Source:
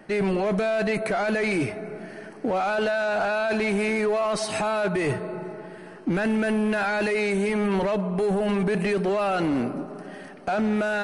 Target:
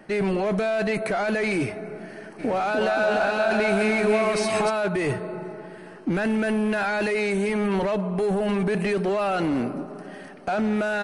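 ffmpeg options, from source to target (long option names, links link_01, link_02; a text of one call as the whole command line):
ffmpeg -i in.wav -filter_complex "[0:a]asplit=3[link_01][link_02][link_03];[link_01]afade=type=out:start_time=2.38:duration=0.02[link_04];[link_02]aecho=1:1:300|525|693.8|820.3|915.2:0.631|0.398|0.251|0.158|0.1,afade=type=in:start_time=2.38:duration=0.02,afade=type=out:start_time=4.69:duration=0.02[link_05];[link_03]afade=type=in:start_time=4.69:duration=0.02[link_06];[link_04][link_05][link_06]amix=inputs=3:normalize=0" out.wav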